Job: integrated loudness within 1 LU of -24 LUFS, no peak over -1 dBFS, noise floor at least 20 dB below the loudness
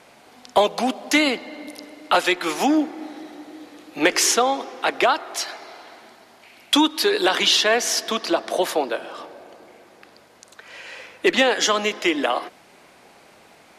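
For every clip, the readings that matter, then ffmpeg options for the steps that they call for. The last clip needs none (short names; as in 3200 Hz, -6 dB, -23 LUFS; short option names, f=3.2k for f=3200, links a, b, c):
loudness -20.5 LUFS; peak -5.5 dBFS; loudness target -24.0 LUFS
-> -af "volume=-3.5dB"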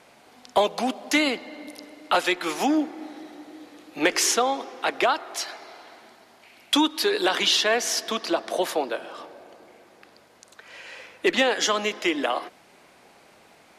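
loudness -24.0 LUFS; peak -9.0 dBFS; noise floor -55 dBFS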